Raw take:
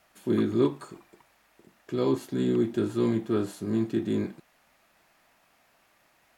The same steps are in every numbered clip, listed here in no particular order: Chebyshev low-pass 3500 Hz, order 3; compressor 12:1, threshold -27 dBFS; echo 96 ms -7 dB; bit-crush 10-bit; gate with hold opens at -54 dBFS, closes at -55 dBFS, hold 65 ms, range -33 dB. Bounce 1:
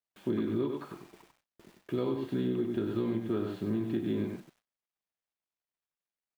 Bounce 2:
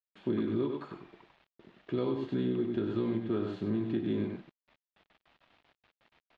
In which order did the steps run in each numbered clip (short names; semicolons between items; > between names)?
Chebyshev low-pass > bit-crush > gate with hold > echo > compressor; gate with hold > echo > compressor > bit-crush > Chebyshev low-pass